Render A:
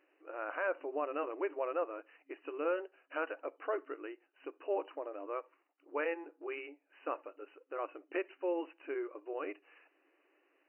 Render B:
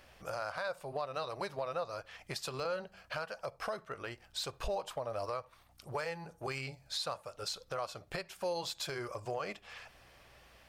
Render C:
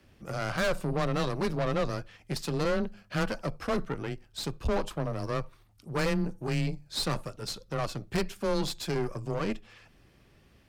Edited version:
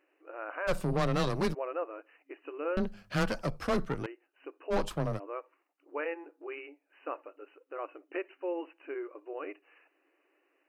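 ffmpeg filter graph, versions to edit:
-filter_complex "[2:a]asplit=3[a][b][c];[0:a]asplit=4[d][e][f][g];[d]atrim=end=0.69[h];[a]atrim=start=0.67:end=1.55[i];[e]atrim=start=1.53:end=2.772[j];[b]atrim=start=2.768:end=4.062[k];[f]atrim=start=4.058:end=4.74[l];[c]atrim=start=4.7:end=5.2[m];[g]atrim=start=5.16[n];[h][i]acrossfade=d=0.02:c1=tri:c2=tri[o];[o][j]acrossfade=d=0.02:c1=tri:c2=tri[p];[p][k]acrossfade=d=0.004:c1=hsin:c2=hsin[q];[q][l]acrossfade=d=0.004:c1=hsin:c2=hsin[r];[r][m]acrossfade=d=0.04:c1=tri:c2=tri[s];[s][n]acrossfade=d=0.04:c1=tri:c2=tri"

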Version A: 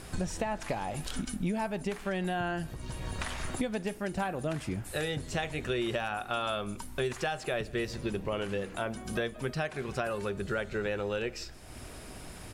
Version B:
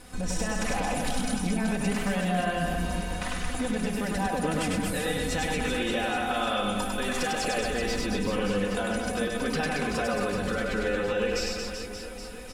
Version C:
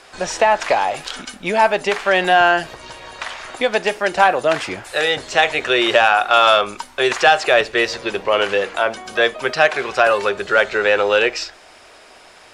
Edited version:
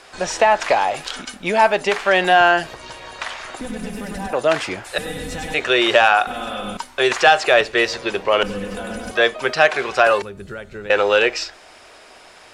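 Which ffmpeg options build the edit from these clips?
-filter_complex "[1:a]asplit=4[a][b][c][d];[2:a]asplit=6[e][f][g][h][i][j];[e]atrim=end=3.612[k];[a]atrim=start=3.608:end=4.332[l];[f]atrim=start=4.328:end=4.982[m];[b]atrim=start=4.978:end=5.542[n];[g]atrim=start=5.538:end=6.272[o];[c]atrim=start=6.268:end=6.772[p];[h]atrim=start=6.768:end=8.432[q];[d]atrim=start=8.428:end=9.112[r];[i]atrim=start=9.108:end=10.222[s];[0:a]atrim=start=10.218:end=10.902[t];[j]atrim=start=10.898[u];[k][l]acrossfade=d=0.004:c1=hsin:c2=hsin[v];[v][m]acrossfade=d=0.004:c1=hsin:c2=hsin[w];[w][n]acrossfade=d=0.004:c1=hsin:c2=hsin[x];[x][o]acrossfade=d=0.004:c1=hsin:c2=hsin[y];[y][p]acrossfade=d=0.004:c1=hsin:c2=hsin[z];[z][q]acrossfade=d=0.004:c1=hsin:c2=hsin[aa];[aa][r]acrossfade=d=0.004:c1=hsin:c2=hsin[ab];[ab][s]acrossfade=d=0.004:c1=hsin:c2=hsin[ac];[ac][t]acrossfade=d=0.004:c1=hsin:c2=hsin[ad];[ad][u]acrossfade=d=0.004:c1=hsin:c2=hsin"

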